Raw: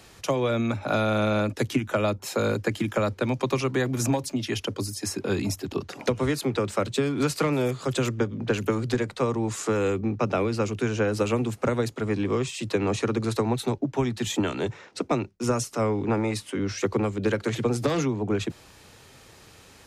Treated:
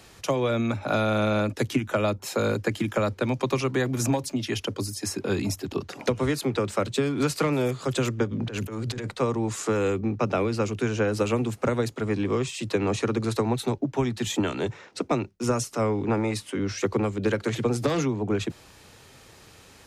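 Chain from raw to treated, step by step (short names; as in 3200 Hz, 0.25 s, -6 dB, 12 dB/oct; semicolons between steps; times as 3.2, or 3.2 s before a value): 8.31–9.11 negative-ratio compressor -31 dBFS, ratio -1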